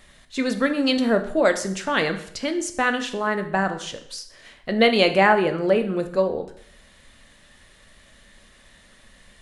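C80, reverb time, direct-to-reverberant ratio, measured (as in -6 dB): 14.5 dB, 0.60 s, 7.0 dB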